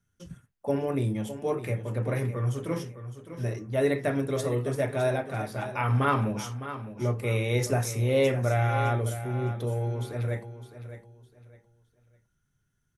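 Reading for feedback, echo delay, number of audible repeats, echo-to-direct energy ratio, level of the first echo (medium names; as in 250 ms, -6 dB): 28%, 609 ms, 3, -11.5 dB, -12.0 dB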